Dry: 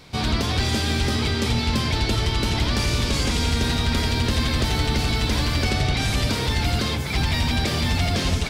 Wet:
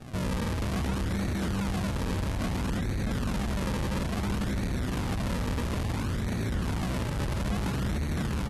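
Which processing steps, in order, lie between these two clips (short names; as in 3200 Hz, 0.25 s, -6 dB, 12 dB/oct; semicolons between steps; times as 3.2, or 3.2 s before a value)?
tracing distortion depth 0.029 ms; inverse Chebyshev low-pass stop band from 1400 Hz, stop band 70 dB; low shelf 150 Hz -12 dB; in parallel at -1.5 dB: limiter -30.5 dBFS, peak gain reduction 10 dB; on the sum: soft clip -34.5 dBFS, distortion -7 dB; added harmonics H 8 -15 dB, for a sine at -34.5 dBFS; pitch shift -3 st; decimation with a swept rate 42×, swing 100% 0.59 Hz; echo 0.646 s -14 dB; gain +7 dB; AAC 32 kbps 48000 Hz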